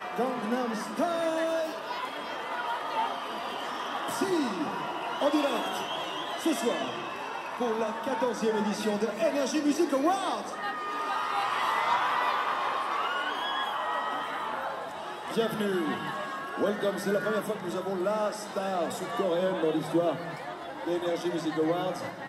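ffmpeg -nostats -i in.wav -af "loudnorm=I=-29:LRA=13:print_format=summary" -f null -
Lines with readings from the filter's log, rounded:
Input Integrated:    -30.1 LUFS
Input True Peak:     -14.2 dBTP
Input LRA:             2.9 LU
Input Threshold:     -40.1 LUFS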